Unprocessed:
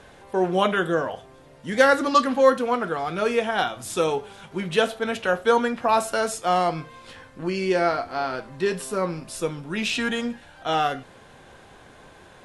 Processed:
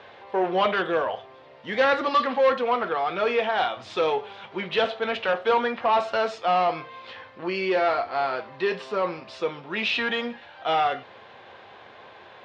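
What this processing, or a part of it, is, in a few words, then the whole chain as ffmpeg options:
overdrive pedal into a guitar cabinet: -filter_complex "[0:a]asplit=2[s0][s1];[s1]highpass=f=720:p=1,volume=7.94,asoftclip=type=tanh:threshold=0.562[s2];[s0][s2]amix=inputs=2:normalize=0,lowpass=f=3200:p=1,volume=0.501,highpass=87,equalizer=f=100:t=q:w=4:g=6,equalizer=f=160:t=q:w=4:g=-6,equalizer=f=280:t=q:w=4:g=-6,equalizer=f=1500:t=q:w=4:g=-5,lowpass=f=4400:w=0.5412,lowpass=f=4400:w=1.3066,volume=0.501"

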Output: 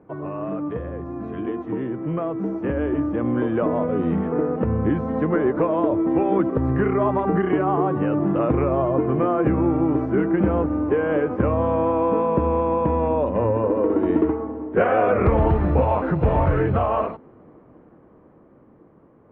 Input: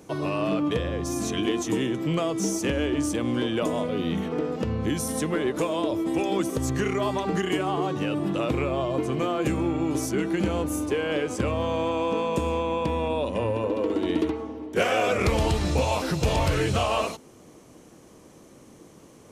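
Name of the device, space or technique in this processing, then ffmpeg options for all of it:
action camera in a waterproof case: -af "lowpass=f=1600:w=0.5412,lowpass=f=1600:w=1.3066,dynaudnorm=f=520:g=11:m=2.66,volume=0.75" -ar 44100 -c:a aac -b:a 48k

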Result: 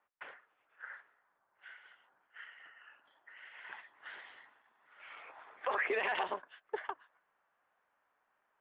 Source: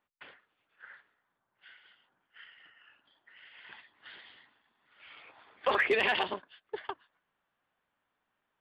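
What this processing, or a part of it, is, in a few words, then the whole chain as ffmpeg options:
DJ mixer with the lows and highs turned down: -filter_complex "[0:a]acrossover=split=450 2300:gain=0.2 1 0.0794[s0][s1][s2];[s0][s1][s2]amix=inputs=3:normalize=0,alimiter=level_in=2:limit=0.0631:level=0:latency=1:release=123,volume=0.501,volume=1.88"

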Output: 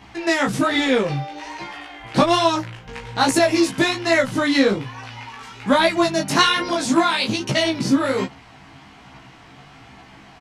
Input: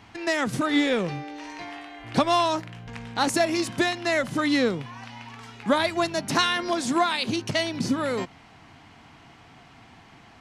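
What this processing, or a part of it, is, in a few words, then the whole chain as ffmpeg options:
double-tracked vocal: -filter_complex "[0:a]asplit=2[s0][s1];[s1]adelay=15,volume=0.708[s2];[s0][s2]amix=inputs=2:normalize=0,flanger=delay=15:depth=6.9:speed=1.2,volume=2.24"

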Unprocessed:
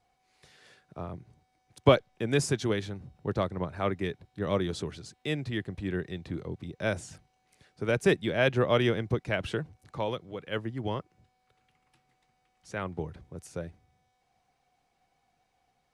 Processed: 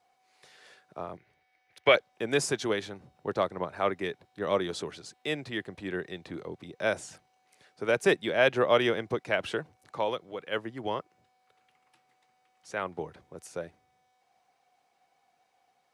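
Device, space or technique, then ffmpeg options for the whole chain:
filter by subtraction: -filter_complex "[0:a]asettb=1/sr,asplit=3[s0][s1][s2];[s0]atrim=end=1.174[s3];[s1]atrim=start=1.17:end=1.95,asetpts=PTS-STARTPTS,afade=t=in:d=0.004:c=qsin,afade=t=out:st=0.776:d=0.004:c=qsin,equalizer=f=125:t=o:w=1:g=-6,equalizer=f=250:t=o:w=1:g=-10,equalizer=f=1000:t=o:w=1:g=-8,equalizer=f=2000:t=o:w=1:g=11,equalizer=f=8000:t=o:w=1:g=-11[s4];[s2]atrim=start=1.946[s5];[s3][s4]acrossfade=d=0.004:c1=hsin:c2=qsin[s6];[s6][s5]acrossfade=d=0.004:c1=qsin:c2=hsin,asplit=2[s7][s8];[s8]lowpass=670,volume=-1[s9];[s7][s9]amix=inputs=2:normalize=0,volume=1.19"

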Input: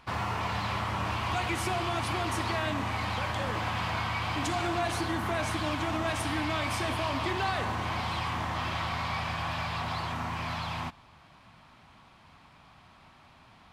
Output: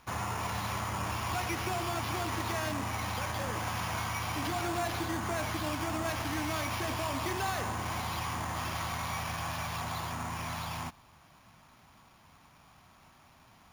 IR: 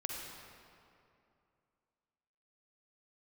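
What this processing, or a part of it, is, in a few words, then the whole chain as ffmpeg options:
crushed at another speed: -af "asetrate=22050,aresample=44100,acrusher=samples=11:mix=1:aa=0.000001,asetrate=88200,aresample=44100,volume=0.708"

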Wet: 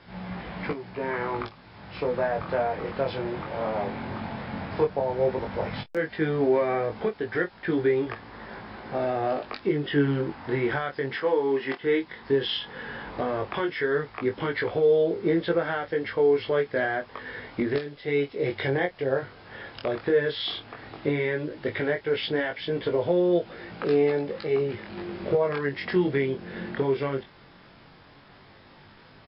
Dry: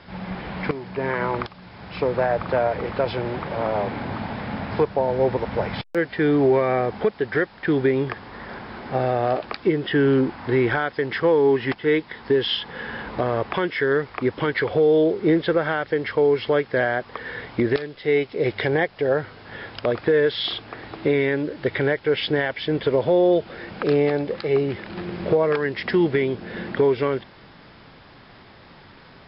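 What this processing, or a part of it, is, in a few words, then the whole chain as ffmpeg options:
double-tracked vocal: -filter_complex "[0:a]asplit=2[s0][s1];[s1]adelay=28,volume=0.211[s2];[s0][s2]amix=inputs=2:normalize=0,flanger=delay=17.5:depth=4.9:speed=0.13,asettb=1/sr,asplit=3[s3][s4][s5];[s3]atrim=end=11.164[s6];[s4]atrim=start=11.16:end=11.81,asetpts=PTS-STARTPTS,afade=t=in:d=0.004:c=qsin,afade=t=out:st=0.646:d=0.004:c=qsin,highpass=260[s7];[s5]atrim=start=11.806[s8];[s6][s7]acrossfade=d=0.004:c1=hsin:c2=qsin[s9];[s9][s8]acrossfade=d=0.004:c1=qsin:c2=hsin,volume=0.794"

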